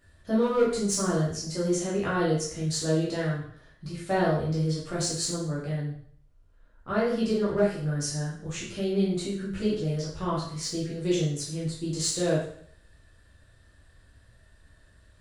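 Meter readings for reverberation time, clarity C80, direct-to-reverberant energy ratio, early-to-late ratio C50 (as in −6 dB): 0.60 s, 7.0 dB, −7.5 dB, 3.0 dB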